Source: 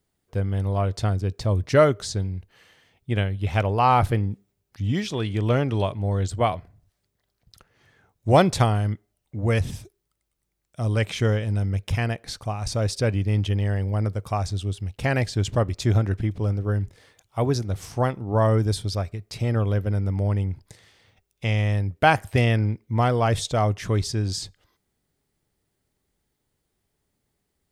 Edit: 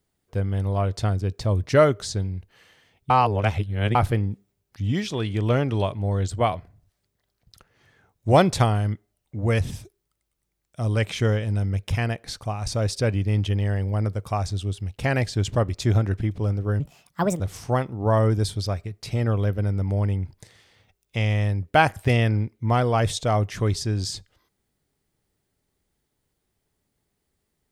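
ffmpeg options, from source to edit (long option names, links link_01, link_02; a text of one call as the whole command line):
ffmpeg -i in.wav -filter_complex "[0:a]asplit=5[link_01][link_02][link_03][link_04][link_05];[link_01]atrim=end=3.102[link_06];[link_02]atrim=start=3.098:end=3.952,asetpts=PTS-STARTPTS,areverse[link_07];[link_03]atrim=start=3.948:end=16.804[link_08];[link_04]atrim=start=16.8:end=17.68,asetpts=PTS-STARTPTS,asetrate=64827,aresample=44100[link_09];[link_05]atrim=start=17.676[link_10];[link_06][link_07]acrossfade=duration=0.004:curve1=hsin:curve2=hsin[link_11];[link_11][link_08]acrossfade=duration=0.004:curve1=hsin:curve2=hsin[link_12];[link_12][link_09]acrossfade=duration=0.004:curve1=hsin:curve2=hsin[link_13];[link_13][link_10]acrossfade=duration=0.004:curve1=hsin:curve2=hsin" out.wav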